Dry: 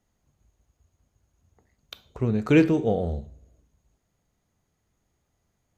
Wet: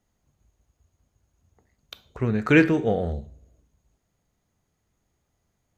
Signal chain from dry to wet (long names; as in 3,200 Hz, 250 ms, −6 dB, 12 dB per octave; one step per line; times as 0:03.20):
0:02.17–0:03.13: parametric band 1,700 Hz +11 dB 0.99 octaves